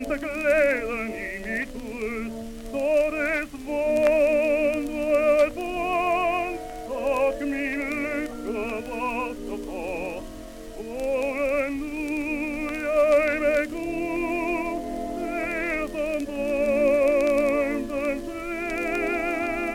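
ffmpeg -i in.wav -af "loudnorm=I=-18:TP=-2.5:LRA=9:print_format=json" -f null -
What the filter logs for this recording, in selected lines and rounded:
"input_i" : "-25.0",
"input_tp" : "-9.9",
"input_lra" : "4.8",
"input_thresh" : "-35.2",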